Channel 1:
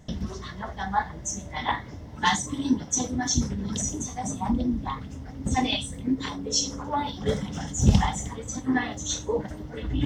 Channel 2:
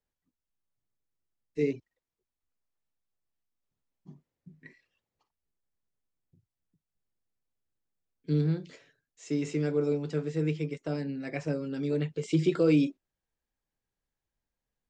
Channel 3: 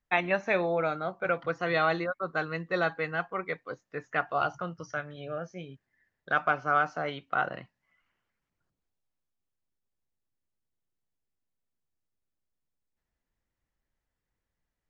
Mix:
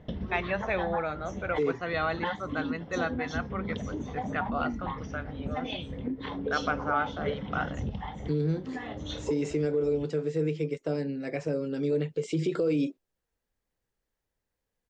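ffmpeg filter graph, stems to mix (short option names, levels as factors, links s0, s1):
-filter_complex "[0:a]lowpass=f=3400:w=0.5412,lowpass=f=3400:w=1.3066,acompressor=threshold=0.0316:ratio=10,volume=0.891[s0];[1:a]volume=1.06,asplit=2[s1][s2];[2:a]adelay=200,volume=0.668[s3];[s2]apad=whole_len=443230[s4];[s0][s4]sidechaincompress=threshold=0.0178:ratio=8:attack=16:release=341[s5];[s5][s1]amix=inputs=2:normalize=0,equalizer=f=480:t=o:w=0.71:g=7,alimiter=limit=0.106:level=0:latency=1:release=71,volume=1[s6];[s3][s6]amix=inputs=2:normalize=0"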